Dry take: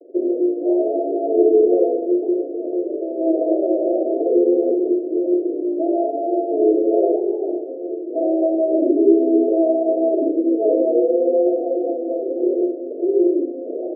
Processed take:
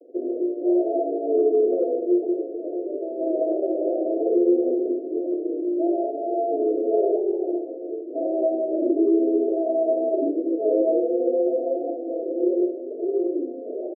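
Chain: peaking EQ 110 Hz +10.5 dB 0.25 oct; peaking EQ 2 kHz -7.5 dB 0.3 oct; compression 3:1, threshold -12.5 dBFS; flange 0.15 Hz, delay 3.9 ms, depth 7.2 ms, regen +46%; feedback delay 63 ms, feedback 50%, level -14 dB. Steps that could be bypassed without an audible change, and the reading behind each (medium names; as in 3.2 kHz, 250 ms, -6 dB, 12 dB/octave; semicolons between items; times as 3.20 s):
peaking EQ 110 Hz: input has nothing below 240 Hz; peaking EQ 2 kHz: input has nothing above 760 Hz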